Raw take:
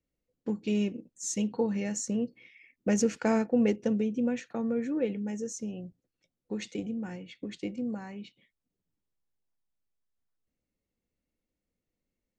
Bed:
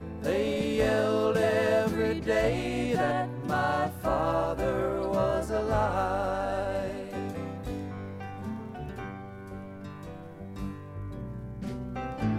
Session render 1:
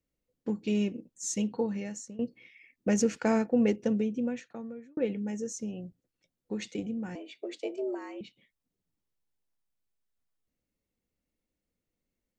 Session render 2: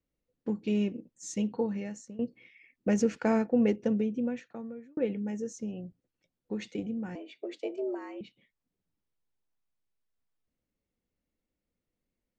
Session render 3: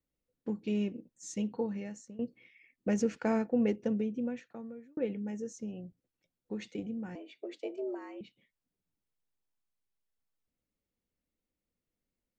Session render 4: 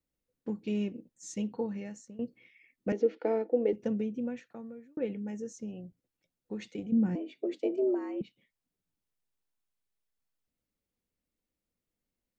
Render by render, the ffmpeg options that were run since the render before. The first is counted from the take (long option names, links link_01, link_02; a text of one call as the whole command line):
ffmpeg -i in.wav -filter_complex "[0:a]asettb=1/sr,asplit=3[link_01][link_02][link_03];[link_01]atrim=end=7.154[link_04];[link_02]atrim=start=7.15:end=8.21,asetpts=PTS-STARTPTS,afade=type=in:duration=0.004:curve=qsin,afade=type=out:start_time=1.056:duration=0.004:curve=qsin,afreqshift=140[link_05];[link_03]atrim=start=8.206[link_06];[link_04][link_05]acrossfade=duration=0.004:curve1=hsin:curve2=qsin[link_07];[link_07][link_06]acrossfade=duration=0.004:curve1=qsin:curve2=hsin,asplit=3[link_08][link_09][link_10];[link_08]atrim=end=2.19,asetpts=PTS-STARTPTS,afade=type=out:start_time=1.24:duration=0.95:curve=qsin:silence=0.105925[link_11];[link_09]atrim=start=2.19:end=4.97,asetpts=PTS-STARTPTS,afade=type=in:duration=0.004:curve=hsin:silence=0.105925,afade=type=out:start_time=1.81:duration=0.97[link_12];[link_10]atrim=start=4.97,asetpts=PTS-STARTPTS,afade=type=in:duration=0.004:curve=hsin[link_13];[link_11][link_12][link_13]concat=n=3:v=0:a=1" out.wav
ffmpeg -i in.wav -af "aemphasis=mode=reproduction:type=50kf" out.wav
ffmpeg -i in.wav -af "volume=-3.5dB" out.wav
ffmpeg -i in.wav -filter_complex "[0:a]asettb=1/sr,asplit=3[link_01][link_02][link_03];[link_01]atrim=end=2.924[link_04];[link_02]atrim=start=2.92:end=3.73,asetpts=PTS-STARTPTS,afade=type=in:duration=0.004:curve=qsin,afade=type=out:start_time=0.806:duration=0.004:curve=qsin,highpass=frequency=290:width=0.5412,highpass=frequency=290:width=1.3066,equalizer=frequency=320:width_type=q:width=4:gain=8,equalizer=frequency=470:width_type=q:width=4:gain=6,equalizer=frequency=1100:width_type=q:width=4:gain=-9,equalizer=frequency=1600:width_type=q:width=4:gain=-10,equalizer=frequency=2600:width_type=q:width=4:gain=-8,lowpass=frequency=3700:width=0.5412,lowpass=frequency=3700:width=1.3066[link_05];[link_03]atrim=start=3.726[link_06];[link_04][link_05]acrossfade=duration=0.004:curve1=hsin:curve2=qsin[link_07];[link_07][link_06]acrossfade=duration=0.004:curve1=qsin:curve2=hsin,asettb=1/sr,asplit=3[link_08][link_09][link_10];[link_08]atrim=end=6.924[link_11];[link_09]atrim=start=6.92:end=8.22,asetpts=PTS-STARTPTS,afade=type=in:duration=0.004:curve=qsin,afade=type=out:start_time=1.296:duration=0.004:curve=qsin,equalizer=frequency=220:width=0.59:gain=13.5[link_12];[link_10]atrim=start=8.216[link_13];[link_11][link_12]acrossfade=duration=0.004:curve1=hsin:curve2=qsin[link_14];[link_14][link_13]acrossfade=duration=0.004:curve1=qsin:curve2=hsin" out.wav